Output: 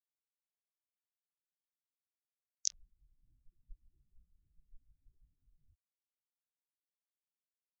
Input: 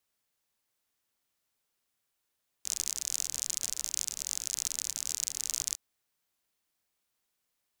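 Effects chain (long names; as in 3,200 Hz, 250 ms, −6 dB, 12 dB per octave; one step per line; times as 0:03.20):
treble cut that deepens with the level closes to 550 Hz, closed at −35.5 dBFS
every bin expanded away from the loudest bin 4 to 1
level +4.5 dB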